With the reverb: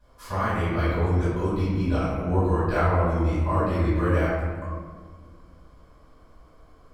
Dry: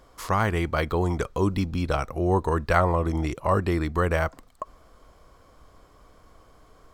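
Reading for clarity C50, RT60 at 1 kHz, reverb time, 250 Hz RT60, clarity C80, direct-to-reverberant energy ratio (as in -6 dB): -3.0 dB, 1.5 s, 1.7 s, 2.9 s, 0.5 dB, -15.0 dB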